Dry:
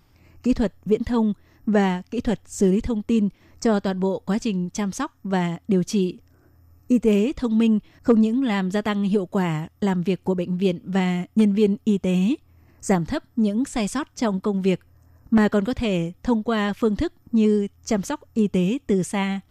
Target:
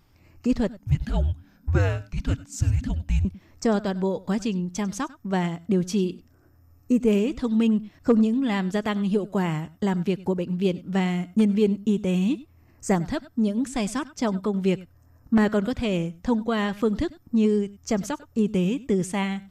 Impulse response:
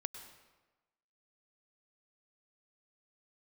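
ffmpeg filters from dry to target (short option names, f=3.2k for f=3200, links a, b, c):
-filter_complex "[0:a]asettb=1/sr,asplit=3[a][b][c];[a]atrim=end=0.794[d];[b]atrim=start=0.79:end=3.25,asetpts=PTS-STARTPTS,afade=t=in:d=0.004:c=qsin,afade=t=out:st=2.456:d=0.004:c=qsin,afreqshift=-290[e];[c]atrim=start=3.246[f];[d][e]acrossfade=d=0.004:c1=hsin:c2=qsin[g];[g][f]acrossfade=d=0.004:c1=qsin:c2=hsin[h];[1:a]atrim=start_sample=2205,atrim=end_sample=4410[i];[h][i]afir=irnorm=-1:irlink=0"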